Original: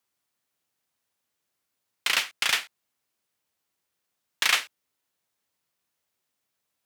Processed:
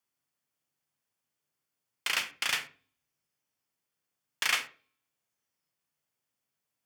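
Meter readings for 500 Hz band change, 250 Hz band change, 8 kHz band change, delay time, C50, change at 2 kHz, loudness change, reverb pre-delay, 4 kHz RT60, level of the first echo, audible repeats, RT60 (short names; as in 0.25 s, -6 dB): -5.0 dB, -3.5 dB, -5.5 dB, none, 14.0 dB, -5.0 dB, -5.5 dB, 30 ms, 0.35 s, none, none, 0.40 s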